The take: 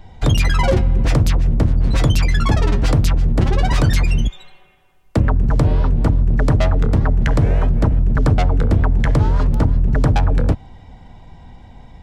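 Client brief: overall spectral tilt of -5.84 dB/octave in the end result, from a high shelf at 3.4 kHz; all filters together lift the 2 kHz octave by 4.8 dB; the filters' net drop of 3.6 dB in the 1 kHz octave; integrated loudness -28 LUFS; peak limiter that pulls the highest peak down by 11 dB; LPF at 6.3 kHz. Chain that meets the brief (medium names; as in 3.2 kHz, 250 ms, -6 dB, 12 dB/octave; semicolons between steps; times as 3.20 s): low-pass 6.3 kHz; peaking EQ 1 kHz -7 dB; peaking EQ 2 kHz +6.5 dB; treble shelf 3.4 kHz +5 dB; trim -5.5 dB; peak limiter -18.5 dBFS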